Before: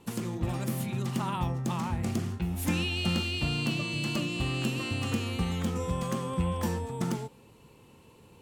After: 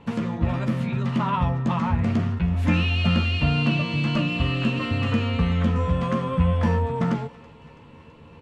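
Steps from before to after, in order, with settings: low-pass 2.5 kHz 12 dB/octave; peaking EQ 360 Hz -12.5 dB 0.25 oct; band-stop 790 Hz, Q 12; in parallel at -10.5 dB: saturation -34 dBFS, distortion -8 dB; on the sum: doubling 13 ms -6.5 dB; thinning echo 329 ms, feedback 73%, high-pass 890 Hz, level -20.5 dB; on a send at -17.5 dB: reverberation RT60 0.25 s, pre-delay 3 ms; on the sum: trim +7 dB

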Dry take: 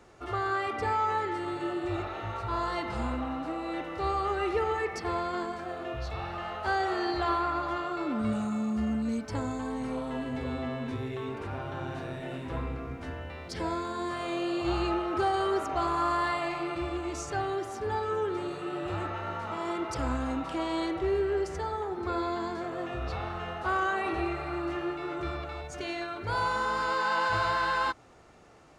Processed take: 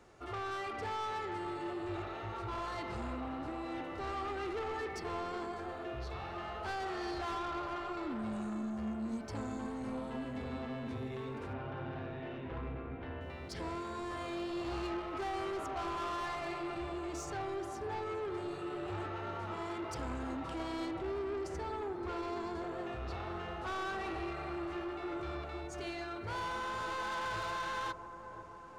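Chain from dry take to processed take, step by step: 11.53–13.21 s: steep low-pass 3.5 kHz; saturation -31 dBFS, distortion -10 dB; feedback echo behind a low-pass 501 ms, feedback 69%, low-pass 1 kHz, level -10 dB; trim -4.5 dB

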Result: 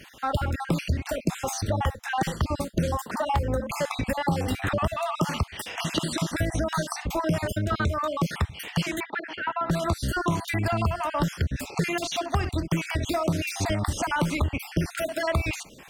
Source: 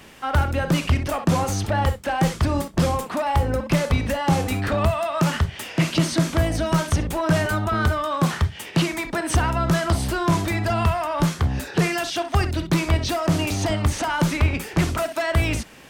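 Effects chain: random holes in the spectrogram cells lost 41%; compression, threshold -21 dBFS, peak gain reduction 8 dB; 9.00–9.70 s: cabinet simulation 450–3100 Hz, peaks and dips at 550 Hz -7 dB, 850 Hz +6 dB, 2.4 kHz -4 dB

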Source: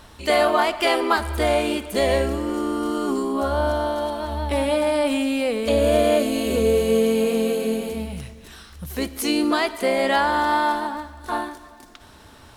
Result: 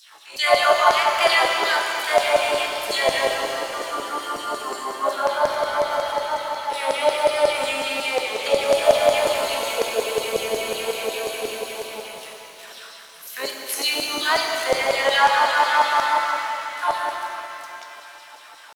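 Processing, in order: tempo 0.67×; LFO high-pass saw down 5.5 Hz 540–6000 Hz; pitch-shifted reverb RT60 3 s, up +7 st, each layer -8 dB, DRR 2 dB

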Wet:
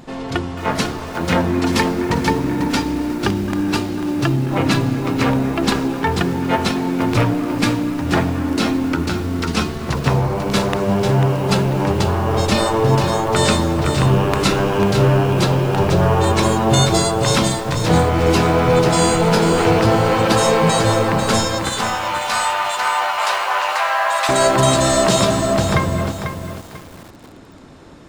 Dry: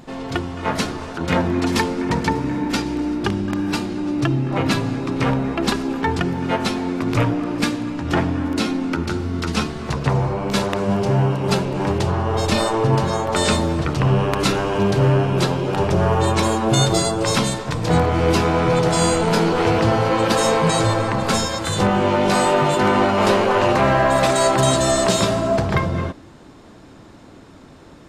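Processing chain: 21.69–24.29 s: high-pass 800 Hz 24 dB/octave; bit-crushed delay 494 ms, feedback 35%, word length 6-bit, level -7.5 dB; trim +2 dB

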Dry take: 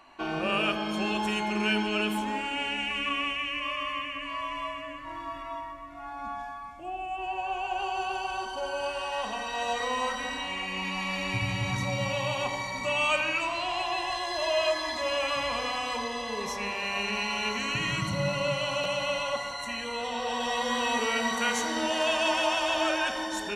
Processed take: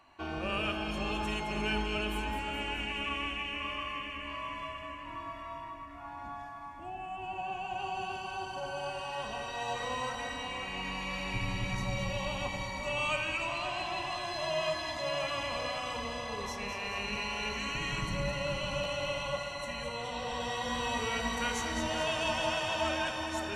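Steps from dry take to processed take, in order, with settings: octave divider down 2 oct, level -1 dB; two-band feedback delay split 2.1 kHz, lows 529 ms, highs 212 ms, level -7 dB; trim -6.5 dB

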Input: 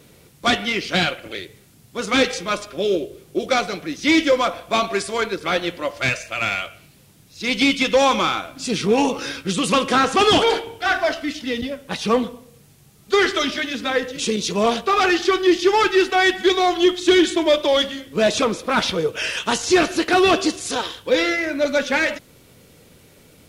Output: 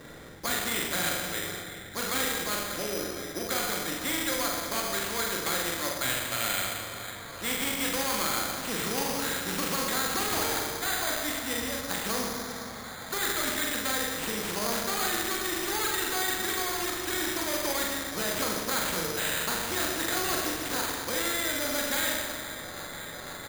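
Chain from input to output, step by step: resonant high shelf 2.4 kHz -9.5 dB, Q 3; peak limiter -13 dBFS, peak gain reduction 8.5 dB; doubling 43 ms -5 dB; feedback echo behind a band-pass 503 ms, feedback 85%, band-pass 1.2 kHz, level -22.5 dB; on a send at -3 dB: reverberation RT60 1.2 s, pre-delay 4 ms; on the sum: careless resampling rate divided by 8×, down none, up hold; spectrum-flattening compressor 2:1; trim -8.5 dB

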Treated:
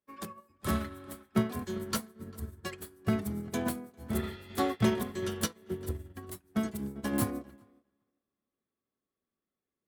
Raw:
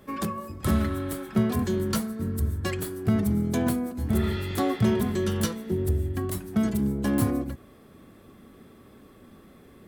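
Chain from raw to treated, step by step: bass shelf 320 Hz -8 dB; tape echo 398 ms, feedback 39%, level -10 dB, low-pass 2.4 kHz; upward expansion 2.5:1, over -50 dBFS; trim +3 dB

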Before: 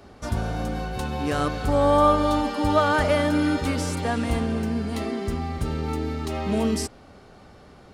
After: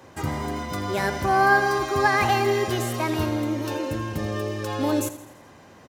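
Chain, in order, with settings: high-pass 60 Hz; hum notches 50/100 Hz; feedback delay 112 ms, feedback 52%, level -14.5 dB; speed mistake 33 rpm record played at 45 rpm

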